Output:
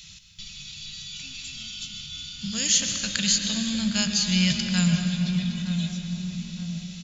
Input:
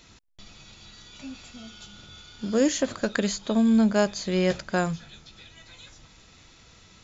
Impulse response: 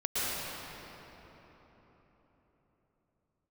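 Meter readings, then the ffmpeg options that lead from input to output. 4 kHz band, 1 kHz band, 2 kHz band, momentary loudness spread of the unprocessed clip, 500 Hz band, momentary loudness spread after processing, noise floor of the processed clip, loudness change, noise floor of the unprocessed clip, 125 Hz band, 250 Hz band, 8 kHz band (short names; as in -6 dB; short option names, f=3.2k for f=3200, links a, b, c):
+12.0 dB, -9.5 dB, +1.5 dB, 22 LU, -18.0 dB, 15 LU, -46 dBFS, -0.5 dB, -54 dBFS, +7.5 dB, -1.0 dB, n/a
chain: -filter_complex "[0:a]firequalizer=gain_entry='entry(110,0);entry(170,7);entry(240,-16);entry(400,-26);entry(770,-16);entry(2800,9)':delay=0.05:min_phase=1,asplit=2[a][b];[b]adelay=915,lowpass=f=890:p=1,volume=-8dB,asplit=2[c][d];[d]adelay=915,lowpass=f=890:p=1,volume=0.52,asplit=2[e][f];[f]adelay=915,lowpass=f=890:p=1,volume=0.52,asplit=2[g][h];[h]adelay=915,lowpass=f=890:p=1,volume=0.52,asplit=2[i][j];[j]adelay=915,lowpass=f=890:p=1,volume=0.52,asplit=2[k][l];[l]adelay=915,lowpass=f=890:p=1,volume=0.52[m];[a][c][e][g][i][k][m]amix=inputs=7:normalize=0,asplit=2[n][o];[1:a]atrim=start_sample=2205[p];[o][p]afir=irnorm=-1:irlink=0,volume=-11.5dB[q];[n][q]amix=inputs=2:normalize=0"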